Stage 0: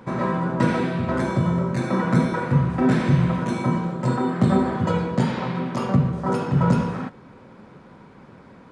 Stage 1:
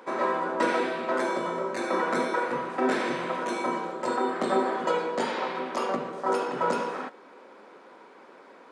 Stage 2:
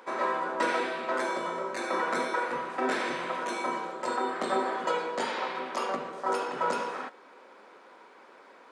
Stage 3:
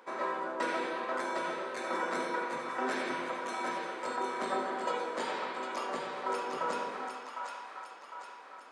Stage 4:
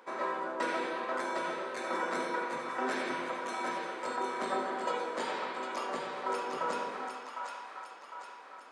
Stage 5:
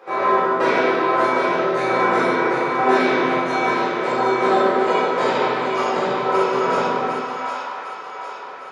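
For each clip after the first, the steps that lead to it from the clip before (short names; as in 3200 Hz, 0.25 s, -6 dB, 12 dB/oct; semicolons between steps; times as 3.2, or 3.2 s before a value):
HPF 340 Hz 24 dB/oct
low shelf 480 Hz -8.5 dB
split-band echo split 710 Hz, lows 0.123 s, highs 0.755 s, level -5 dB; gain -5.5 dB
nothing audible
reverb RT60 1.1 s, pre-delay 3 ms, DRR -9 dB; gain -2 dB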